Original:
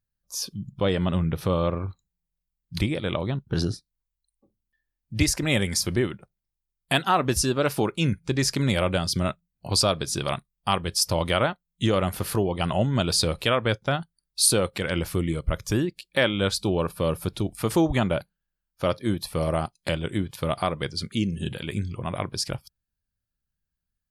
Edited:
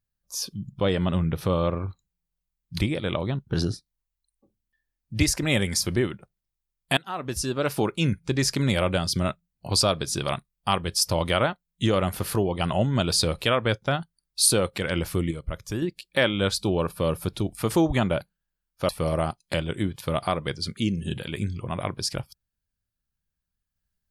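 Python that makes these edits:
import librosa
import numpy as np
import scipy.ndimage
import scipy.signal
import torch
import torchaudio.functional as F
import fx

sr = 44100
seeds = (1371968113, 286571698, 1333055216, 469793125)

y = fx.edit(x, sr, fx.fade_in_from(start_s=6.97, length_s=0.88, floor_db=-19.5),
    fx.clip_gain(start_s=15.31, length_s=0.51, db=-6.0),
    fx.cut(start_s=18.89, length_s=0.35), tone=tone)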